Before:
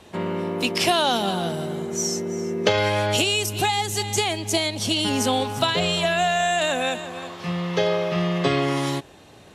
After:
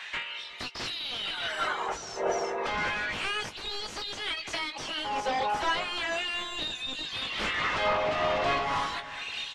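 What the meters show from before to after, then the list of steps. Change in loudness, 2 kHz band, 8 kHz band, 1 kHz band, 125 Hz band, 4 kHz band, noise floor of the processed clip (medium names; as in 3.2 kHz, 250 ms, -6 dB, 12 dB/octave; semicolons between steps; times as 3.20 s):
-7.5 dB, -3.5 dB, -15.0 dB, -5.5 dB, -18.5 dB, -7.0 dB, -42 dBFS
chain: reverb removal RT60 0.85 s; tilt EQ +3 dB/octave; level rider gain up to 14 dB; peak limiter -12.5 dBFS, peak gain reduction 12 dB; compression 16:1, threshold -32 dBFS, peak gain reduction 15 dB; LFO high-pass sine 0.33 Hz 690–4300 Hz; sine folder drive 16 dB, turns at -16.5 dBFS; tape spacing loss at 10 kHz 31 dB; doubling 19 ms -8 dB; feedback delay 365 ms, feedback 30%, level -17 dB; random flutter of the level, depth 60%; trim -1 dB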